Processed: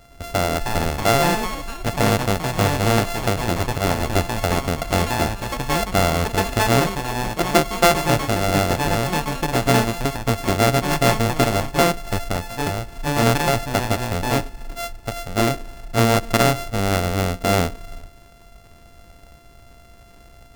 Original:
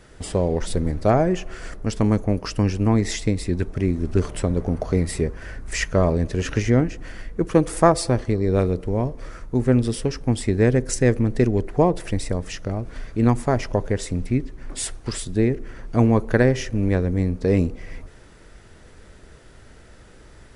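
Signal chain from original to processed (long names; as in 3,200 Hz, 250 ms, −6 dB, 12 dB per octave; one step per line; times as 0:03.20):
samples sorted by size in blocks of 64 samples
delay with pitch and tempo change per echo 384 ms, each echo +4 semitones, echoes 3, each echo −6 dB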